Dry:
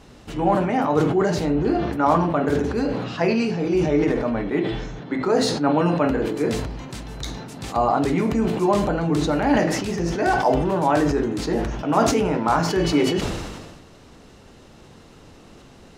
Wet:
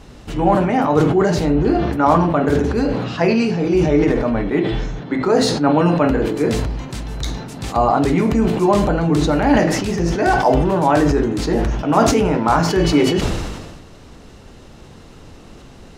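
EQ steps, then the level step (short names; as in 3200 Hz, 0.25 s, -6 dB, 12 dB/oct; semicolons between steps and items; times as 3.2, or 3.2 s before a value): low shelf 84 Hz +7.5 dB; +4.0 dB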